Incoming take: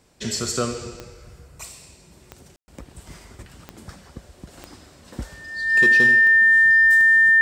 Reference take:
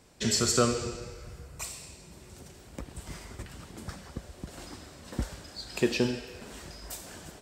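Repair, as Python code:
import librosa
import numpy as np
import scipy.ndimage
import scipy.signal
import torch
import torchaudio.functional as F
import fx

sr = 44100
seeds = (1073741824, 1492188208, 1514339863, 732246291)

y = fx.fix_declip(x, sr, threshold_db=-10.5)
y = fx.fix_declick_ar(y, sr, threshold=10.0)
y = fx.notch(y, sr, hz=1800.0, q=30.0)
y = fx.fix_ambience(y, sr, seeds[0], print_start_s=3.93, print_end_s=4.43, start_s=2.56, end_s=2.68)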